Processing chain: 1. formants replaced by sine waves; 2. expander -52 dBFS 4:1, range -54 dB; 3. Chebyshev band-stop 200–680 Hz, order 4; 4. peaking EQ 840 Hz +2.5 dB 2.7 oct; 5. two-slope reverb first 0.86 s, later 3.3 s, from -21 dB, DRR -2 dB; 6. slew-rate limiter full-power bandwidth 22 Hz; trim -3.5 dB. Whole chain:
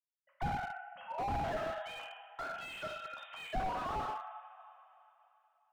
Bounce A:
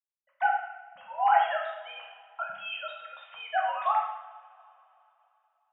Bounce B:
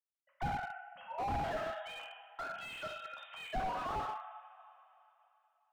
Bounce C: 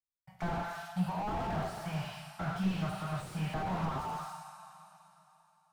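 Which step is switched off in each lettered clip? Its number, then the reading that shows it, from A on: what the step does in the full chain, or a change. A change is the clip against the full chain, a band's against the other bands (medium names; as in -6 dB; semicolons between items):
6, crest factor change +5.0 dB; 4, momentary loudness spread change +1 LU; 1, 250 Hz band +12.0 dB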